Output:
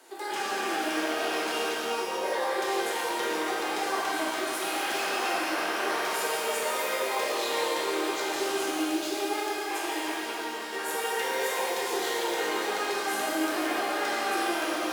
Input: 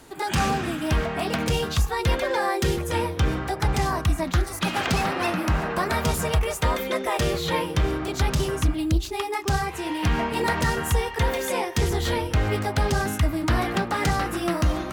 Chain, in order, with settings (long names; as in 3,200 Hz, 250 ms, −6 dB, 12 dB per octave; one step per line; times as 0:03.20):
high-pass filter 340 Hz 24 dB per octave
0:09.48–0:10.73: compressor whose output falls as the input rises −34 dBFS, ratio −0.5
brickwall limiter −22 dBFS, peak gain reduction 9 dB
0:01.72–0:02.25: linear-phase brick-wall low-pass 1,300 Hz
reverb with rising layers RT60 3.1 s, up +12 semitones, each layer −8 dB, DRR −6.5 dB
level −6 dB